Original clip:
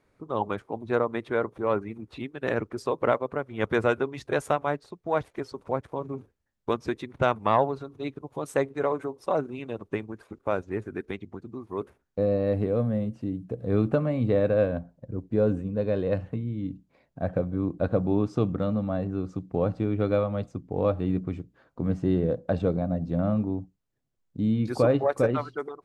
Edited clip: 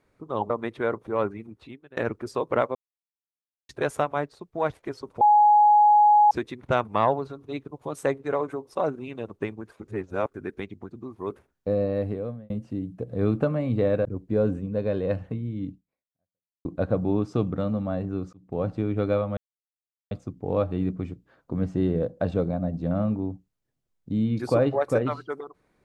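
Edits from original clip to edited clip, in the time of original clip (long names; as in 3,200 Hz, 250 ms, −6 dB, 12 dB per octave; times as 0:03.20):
0:00.50–0:01.01: remove
0:01.76–0:02.48: fade out, to −20.5 dB
0:03.26–0:04.20: silence
0:05.72–0:06.82: beep over 836 Hz −13 dBFS
0:10.39–0:10.85: reverse
0:12.19–0:13.01: fade out equal-power
0:14.56–0:15.07: remove
0:16.72–0:17.67: fade out exponential
0:19.35–0:19.84: fade in equal-power
0:20.39: splice in silence 0.74 s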